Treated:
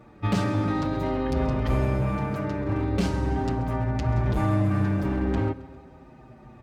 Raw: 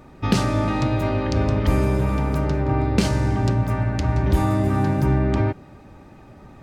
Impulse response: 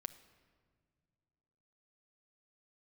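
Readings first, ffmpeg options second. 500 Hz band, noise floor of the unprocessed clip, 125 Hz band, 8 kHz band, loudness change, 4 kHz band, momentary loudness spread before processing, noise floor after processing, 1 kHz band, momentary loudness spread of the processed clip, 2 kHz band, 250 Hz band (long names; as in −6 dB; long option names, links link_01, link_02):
−4.5 dB, −46 dBFS, −5.0 dB, −10.0 dB, −4.5 dB, −7.5 dB, 3 LU, −50 dBFS, −4.5 dB, 4 LU, −4.5 dB, −3.5 dB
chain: -filter_complex "[0:a]highpass=46,highshelf=frequency=3800:gain=-8.5,volume=16dB,asoftclip=hard,volume=-16dB,asplit=2[link_01][link_02];[link_02]aecho=0:1:134|268|402|536|670:0.119|0.0677|0.0386|0.022|0.0125[link_03];[link_01][link_03]amix=inputs=2:normalize=0,asplit=2[link_04][link_05];[link_05]adelay=6.4,afreqshift=-0.43[link_06];[link_04][link_06]amix=inputs=2:normalize=1"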